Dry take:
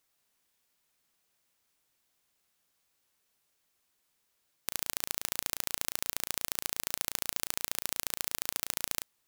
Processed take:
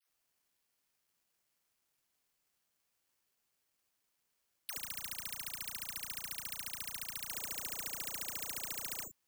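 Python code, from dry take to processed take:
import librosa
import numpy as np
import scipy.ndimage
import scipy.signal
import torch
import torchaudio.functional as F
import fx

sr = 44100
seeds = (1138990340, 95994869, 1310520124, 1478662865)

y = fx.peak_eq(x, sr, hz=470.0, db=-12.0, octaves=1.4, at=(4.72, 7.24))
y = fx.dispersion(y, sr, late='lows', ms=94.0, hz=740.0)
y = (np.kron(scipy.signal.resample_poly(y, 1, 6), np.eye(6)[0]) * 6)[:len(y)]
y = F.gain(torch.from_numpy(y), -5.0).numpy()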